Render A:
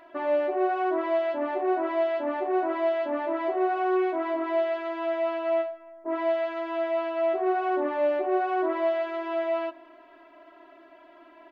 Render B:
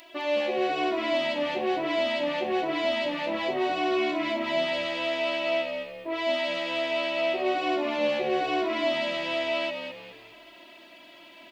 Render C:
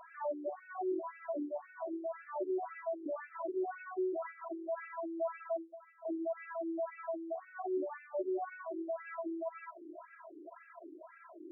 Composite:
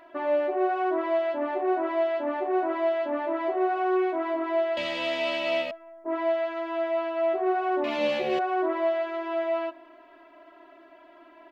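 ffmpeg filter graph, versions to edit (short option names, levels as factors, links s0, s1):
-filter_complex "[1:a]asplit=2[s0][s1];[0:a]asplit=3[s2][s3][s4];[s2]atrim=end=4.772[s5];[s0]atrim=start=4.768:end=5.712[s6];[s3]atrim=start=5.708:end=7.842[s7];[s1]atrim=start=7.838:end=8.392[s8];[s4]atrim=start=8.388[s9];[s5][s6]acrossfade=d=0.004:c1=hsin:c2=hsin[s10];[s10][s7]acrossfade=d=0.004:c1=hsin:c2=hsin[s11];[s11][s8]acrossfade=d=0.004:c1=hsin:c2=hsin[s12];[s12][s9]acrossfade=d=0.004:c1=hsin:c2=hsin"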